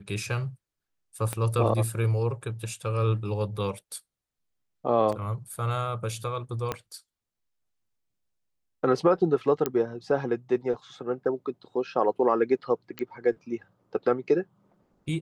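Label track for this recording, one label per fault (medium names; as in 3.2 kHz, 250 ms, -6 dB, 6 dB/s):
1.330000	1.330000	pop -16 dBFS
5.120000	5.130000	dropout 5.7 ms
6.720000	6.720000	pop -15 dBFS
9.660000	9.660000	pop -11 dBFS
12.990000	12.990000	pop -18 dBFS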